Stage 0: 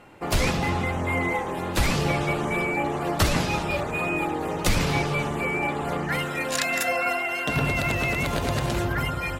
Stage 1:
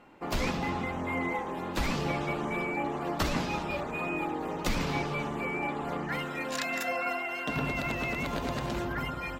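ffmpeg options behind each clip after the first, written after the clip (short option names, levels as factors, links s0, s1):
-af "equalizer=f=100:t=o:w=0.67:g=-7,equalizer=f=250:t=o:w=0.67:g=5,equalizer=f=1000:t=o:w=0.67:g=3,equalizer=f=10000:t=o:w=0.67:g=-9,volume=0.422"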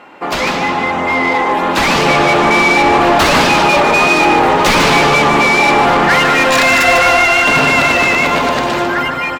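-filter_complex "[0:a]dynaudnorm=f=450:g=9:m=4.73,asplit=2[s0][s1];[s1]highpass=f=720:p=1,volume=22.4,asoftclip=type=tanh:threshold=0.708[s2];[s0][s2]amix=inputs=2:normalize=0,lowpass=f=3800:p=1,volume=0.501,aecho=1:1:149:0.447"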